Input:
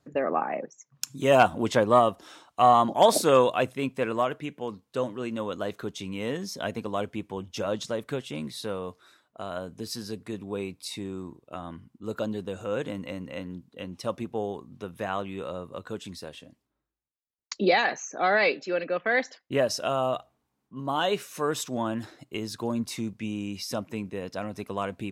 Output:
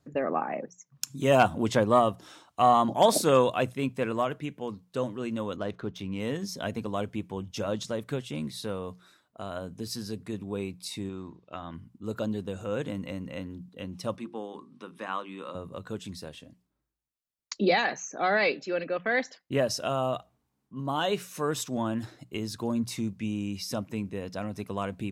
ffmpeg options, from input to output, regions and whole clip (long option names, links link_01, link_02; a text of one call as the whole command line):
ffmpeg -i in.wav -filter_complex "[0:a]asettb=1/sr,asplit=3[link_01][link_02][link_03];[link_01]atrim=end=5.564[link_04];[link_02]atrim=start=5.56:end=6.2,asetpts=PTS-STARTPTS,afade=type=in:duration=0.004:curve=qsin,afade=type=out:start_time=0.636:duration=0.004:curve=qsin,bandreject=frequency=7400:width=6.3,adynamicsmooth=sensitivity=6.5:basefreq=2800[link_05];[link_03]atrim=start=6.196[link_06];[link_04][link_05]acrossfade=duration=0.004:curve1=hsin:curve2=qsin[link_07];[link_07][link_06]acrossfade=duration=0.004:curve1=qsin:curve2=hsin,asettb=1/sr,asplit=3[link_08][link_09][link_10];[link_08]atrim=end=11.094[link_11];[link_09]atrim=start=11.09:end=11.74,asetpts=PTS-STARTPTS,afade=type=in:duration=0.004:curve=qsin,afade=type=out:start_time=0.646:duration=0.004:curve=qsin,lowpass=frequency=5400:width=0.5412,lowpass=frequency=5400:width=1.3066,tiltshelf=frequency=650:gain=-4[link_12];[link_10]atrim=start=11.736[link_13];[link_11][link_12]acrossfade=duration=0.004:curve1=hsin:curve2=qsin[link_14];[link_14][link_13]acrossfade=duration=0.004:curve1=qsin:curve2=hsin,asettb=1/sr,asplit=3[link_15][link_16][link_17];[link_15]atrim=end=14.164[link_18];[link_16]atrim=start=14.16:end=15.55,asetpts=PTS-STARTPTS,afade=type=in:duration=0.004:curve=qsin,afade=type=out:start_time=1.386:duration=0.004:curve=qsin,highpass=frequency=200:width=0.5412,highpass=frequency=200:width=1.3066,equalizer=frequency=200:width_type=q:width=4:gain=-4,equalizer=frequency=420:width_type=q:width=4:gain=-7,equalizer=frequency=680:width_type=q:width=4:gain=-9,equalizer=frequency=1100:width_type=q:width=4:gain=6,equalizer=frequency=6800:width_type=q:width=4:gain=-8,lowpass=frequency=9500:width=0.5412,lowpass=frequency=9500:width=1.3066,bandreject=frequency=50:width_type=h:width=6,bandreject=frequency=100:width_type=h:width=6,bandreject=frequency=150:width_type=h:width=6,bandreject=frequency=200:width_type=h:width=6,bandreject=frequency=250:width_type=h:width=6,bandreject=frequency=300:width_type=h:width=6,bandreject=frequency=350:width_type=h:width=6,bandreject=frequency=400:width_type=h:width=6[link_19];[link_17]atrim=start=15.546[link_20];[link_18][link_19]acrossfade=duration=0.004:curve1=hsin:curve2=qsin[link_21];[link_21][link_20]acrossfade=duration=0.004:curve1=qsin:curve2=hsin,bass=frequency=250:gain=6,treble=frequency=4000:gain=2,bandreject=frequency=60:width_type=h:width=6,bandreject=frequency=120:width_type=h:width=6,bandreject=frequency=180:width_type=h:width=6,volume=-2.5dB" out.wav